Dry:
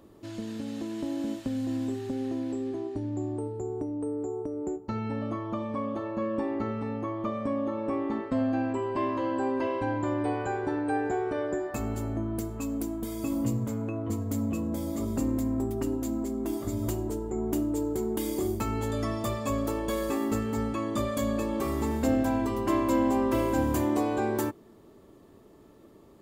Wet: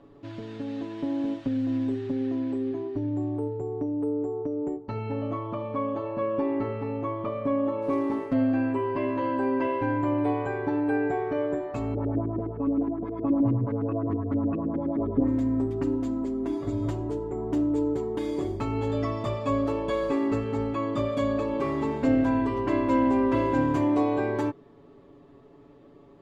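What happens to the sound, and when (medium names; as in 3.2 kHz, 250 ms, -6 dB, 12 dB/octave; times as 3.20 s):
7.82–8.33 s: sample-rate reducer 11 kHz, jitter 20%
11.94–15.28 s: LFO low-pass saw up 9.6 Hz 290–1900 Hz
whole clip: low-pass 3.2 kHz 12 dB/octave; comb 7.1 ms, depth 76%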